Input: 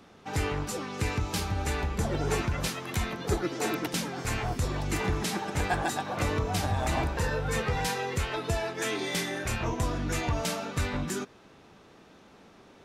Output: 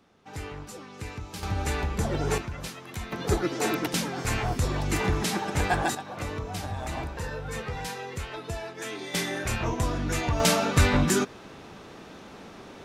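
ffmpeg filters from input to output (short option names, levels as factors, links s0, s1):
-af "asetnsamples=n=441:p=0,asendcmd='1.43 volume volume 1.5dB;2.38 volume volume -6dB;3.12 volume volume 3dB;5.95 volume volume -5dB;9.14 volume volume 2dB;10.4 volume volume 9.5dB',volume=0.398"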